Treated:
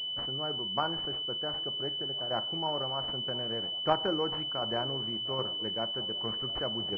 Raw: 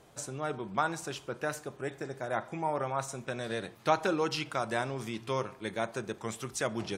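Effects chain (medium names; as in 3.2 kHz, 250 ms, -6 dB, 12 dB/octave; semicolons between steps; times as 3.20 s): tremolo saw down 1.3 Hz, depth 40%; feedback echo behind a band-pass 702 ms, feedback 63%, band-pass 480 Hz, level -18 dB; class-D stage that switches slowly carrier 3 kHz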